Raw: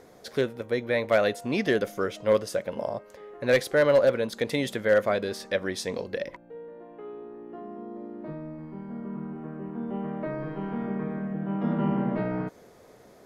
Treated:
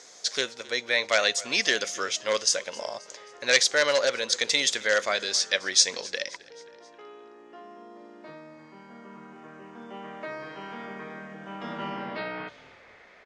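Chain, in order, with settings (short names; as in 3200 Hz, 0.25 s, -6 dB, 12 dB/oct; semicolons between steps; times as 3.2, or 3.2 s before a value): low-pass sweep 6500 Hz -> 2200 Hz, 11.81–12.84; weighting filter ITU-R 468; frequency-shifting echo 0.265 s, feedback 51%, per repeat -42 Hz, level -21.5 dB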